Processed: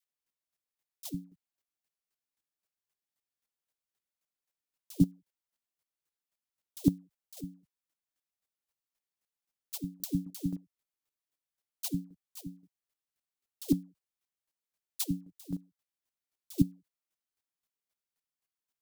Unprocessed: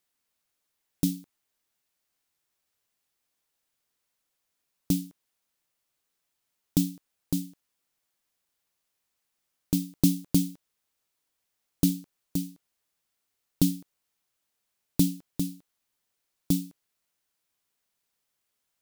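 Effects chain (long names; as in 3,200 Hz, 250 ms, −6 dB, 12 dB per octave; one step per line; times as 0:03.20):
all-pass dispersion lows, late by 117 ms, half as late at 590 Hz
square-wave tremolo 3.8 Hz, depth 65%, duty 15%
expander for the loud parts 1.5 to 1, over −40 dBFS
level +3 dB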